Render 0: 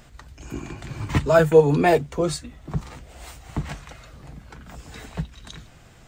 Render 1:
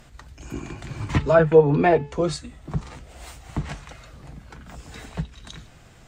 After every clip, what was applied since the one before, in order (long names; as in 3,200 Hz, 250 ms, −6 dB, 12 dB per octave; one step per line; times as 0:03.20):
hum removal 431.6 Hz, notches 40
treble cut that deepens with the level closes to 2,200 Hz, closed at −12.5 dBFS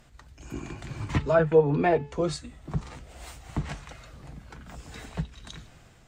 automatic gain control gain up to 4.5 dB
level −7 dB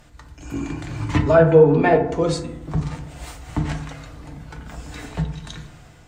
feedback delay network reverb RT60 0.82 s, low-frequency decay 1.35×, high-frequency decay 0.35×, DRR 4.5 dB
level +5.5 dB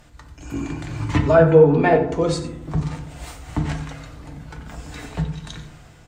single-tap delay 91 ms −14.5 dB